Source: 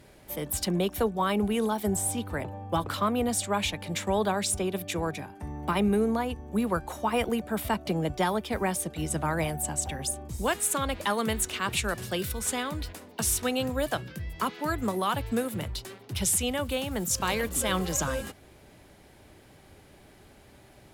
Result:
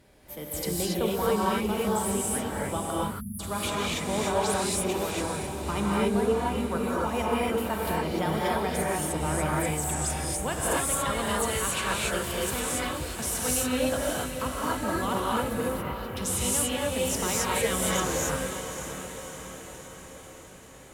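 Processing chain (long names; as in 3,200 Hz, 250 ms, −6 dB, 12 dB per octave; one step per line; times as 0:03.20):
on a send: feedback delay with all-pass diffusion 584 ms, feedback 59%, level −9 dB
0:02.91–0:03.40: on the sum: time-frequency box erased 220–9,600 Hz
0:15.53–0:16.17: flat-topped bell 6,100 Hz −15 dB
reverb whose tail is shaped and stops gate 310 ms rising, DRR −5.5 dB
level −5.5 dB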